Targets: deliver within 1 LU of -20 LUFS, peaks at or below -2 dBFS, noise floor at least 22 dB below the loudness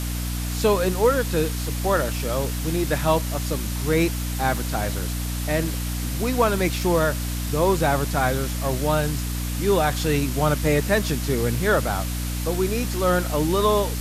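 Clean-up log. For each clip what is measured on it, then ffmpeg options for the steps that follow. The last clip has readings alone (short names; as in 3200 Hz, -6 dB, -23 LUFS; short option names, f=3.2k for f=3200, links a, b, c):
hum 60 Hz; harmonics up to 300 Hz; hum level -25 dBFS; noise floor -27 dBFS; noise floor target -45 dBFS; loudness -23.0 LUFS; peak -6.5 dBFS; loudness target -20.0 LUFS
-> -af "bandreject=f=60:t=h:w=6,bandreject=f=120:t=h:w=6,bandreject=f=180:t=h:w=6,bandreject=f=240:t=h:w=6,bandreject=f=300:t=h:w=6"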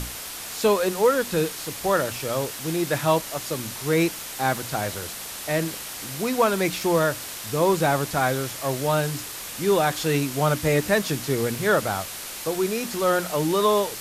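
hum none; noise floor -36 dBFS; noise floor target -46 dBFS
-> -af "afftdn=nr=10:nf=-36"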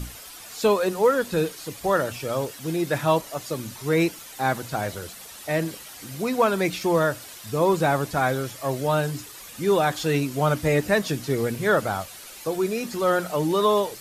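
noise floor -42 dBFS; noise floor target -47 dBFS
-> -af "afftdn=nr=6:nf=-42"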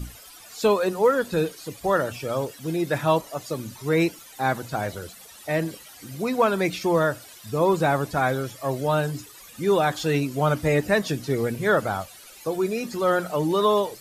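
noise floor -46 dBFS; noise floor target -47 dBFS
-> -af "afftdn=nr=6:nf=-46"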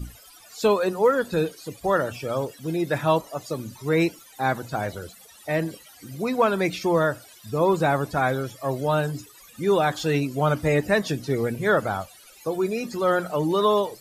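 noise floor -50 dBFS; loudness -24.5 LUFS; peak -8.0 dBFS; loudness target -20.0 LUFS
-> -af "volume=4.5dB"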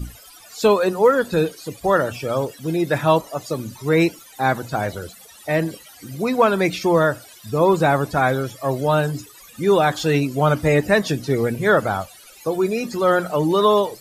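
loudness -20.0 LUFS; peak -3.5 dBFS; noise floor -45 dBFS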